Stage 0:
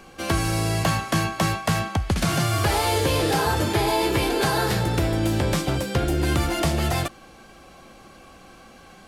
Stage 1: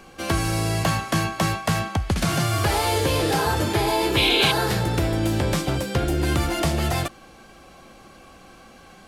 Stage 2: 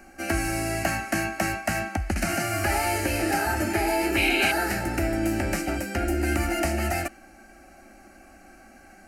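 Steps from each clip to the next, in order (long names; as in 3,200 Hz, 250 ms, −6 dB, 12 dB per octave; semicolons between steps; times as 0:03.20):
sound drawn into the spectrogram noise, 0:04.16–0:04.52, 2,100–4,200 Hz −21 dBFS
dynamic equaliser 2,800 Hz, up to +6 dB, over −43 dBFS, Q 1.7; phaser with its sweep stopped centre 700 Hz, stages 8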